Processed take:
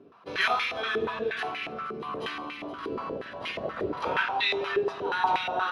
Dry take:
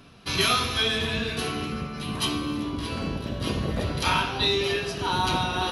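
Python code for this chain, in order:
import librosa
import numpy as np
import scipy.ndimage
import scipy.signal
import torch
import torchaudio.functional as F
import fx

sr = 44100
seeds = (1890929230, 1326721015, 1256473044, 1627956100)

y = x + 10.0 ** (-15.5 / 20.0) * np.pad(x, (int(473 * sr / 1000.0), 0))[:len(x)]
y = fx.filter_held_bandpass(y, sr, hz=8.4, low_hz=390.0, high_hz=2200.0)
y = F.gain(torch.from_numpy(y), 8.5).numpy()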